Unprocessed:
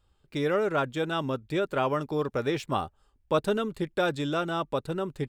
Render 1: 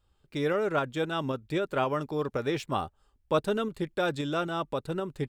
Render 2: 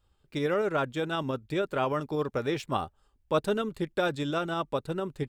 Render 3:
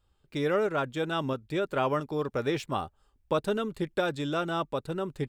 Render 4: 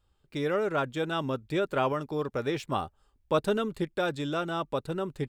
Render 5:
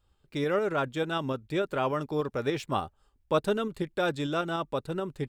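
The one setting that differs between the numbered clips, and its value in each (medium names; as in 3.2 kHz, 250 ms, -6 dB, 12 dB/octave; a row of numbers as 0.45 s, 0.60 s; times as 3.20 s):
tremolo, rate: 3.8 Hz, 13 Hz, 1.5 Hz, 0.52 Hz, 6.8 Hz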